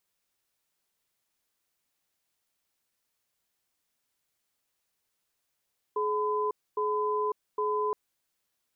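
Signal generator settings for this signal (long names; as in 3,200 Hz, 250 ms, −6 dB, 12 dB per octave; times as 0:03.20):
tone pair in a cadence 423 Hz, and 1,010 Hz, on 0.55 s, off 0.26 s, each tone −28.5 dBFS 1.97 s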